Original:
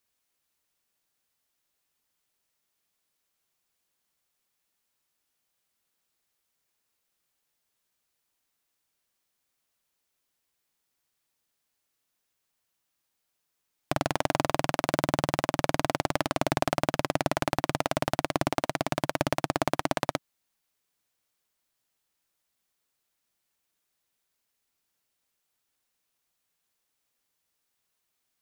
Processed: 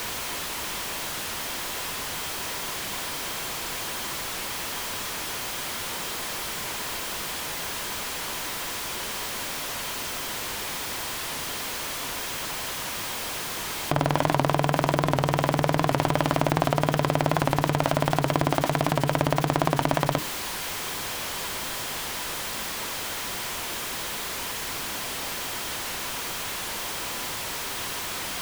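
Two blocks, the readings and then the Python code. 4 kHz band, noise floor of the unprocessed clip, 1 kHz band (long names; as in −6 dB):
+11.0 dB, −80 dBFS, +6.0 dB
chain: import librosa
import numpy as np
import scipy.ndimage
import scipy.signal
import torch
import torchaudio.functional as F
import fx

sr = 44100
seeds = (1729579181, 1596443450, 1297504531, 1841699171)

p1 = x + 0.5 * 10.0 ** (-27.5 / 20.0) * np.sign(x)
p2 = fx.high_shelf(p1, sr, hz=4900.0, db=-9.5)
p3 = fx.over_compress(p2, sr, threshold_db=-31.0, ratio=-1.0)
p4 = p2 + (p3 * librosa.db_to_amplitude(0.0))
p5 = fx.hum_notches(p4, sr, base_hz=60, count=5)
p6 = fx.small_body(p5, sr, hz=(990.0, 3200.0), ring_ms=45, db=6)
y = fx.record_warp(p6, sr, rpm=78.0, depth_cents=100.0)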